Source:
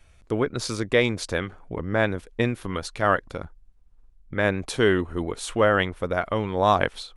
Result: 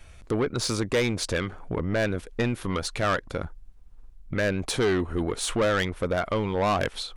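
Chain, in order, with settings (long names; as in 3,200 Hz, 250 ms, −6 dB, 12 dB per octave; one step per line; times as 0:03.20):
in parallel at +2 dB: downward compressor, threshold −33 dBFS, peak gain reduction 18 dB
on the sum: soft clipping −18.5 dBFS, distortion −9 dB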